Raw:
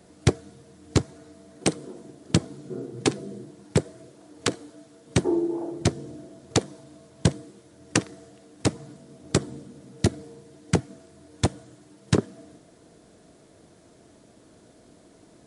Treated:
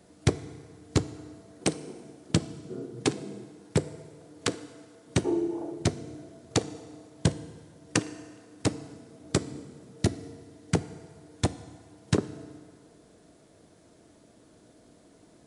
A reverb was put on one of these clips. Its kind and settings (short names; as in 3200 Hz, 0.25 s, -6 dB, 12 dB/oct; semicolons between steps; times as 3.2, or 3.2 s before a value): FDN reverb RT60 2 s, low-frequency decay 0.8×, high-frequency decay 0.65×, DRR 14 dB; gain -3.5 dB